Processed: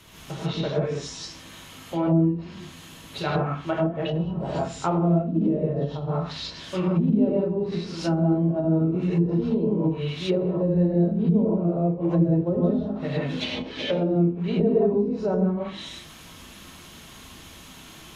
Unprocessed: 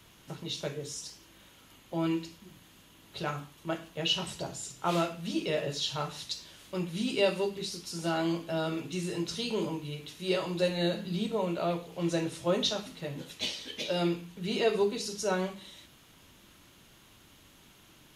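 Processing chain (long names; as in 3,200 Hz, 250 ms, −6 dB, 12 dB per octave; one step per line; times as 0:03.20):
reverb whose tail is shaped and stops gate 200 ms rising, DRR −7 dB
treble cut that deepens with the level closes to 350 Hz, closed at −21.5 dBFS
level +5.5 dB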